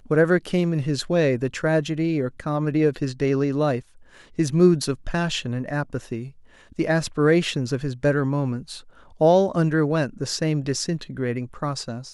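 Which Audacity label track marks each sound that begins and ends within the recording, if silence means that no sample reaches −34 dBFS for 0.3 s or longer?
4.390000	6.290000	sound
6.790000	8.800000	sound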